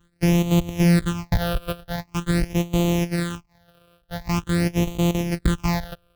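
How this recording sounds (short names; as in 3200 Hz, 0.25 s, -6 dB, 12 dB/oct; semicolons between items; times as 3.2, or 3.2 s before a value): a buzz of ramps at a fixed pitch in blocks of 256 samples; phasing stages 8, 0.45 Hz, lowest notch 260–1600 Hz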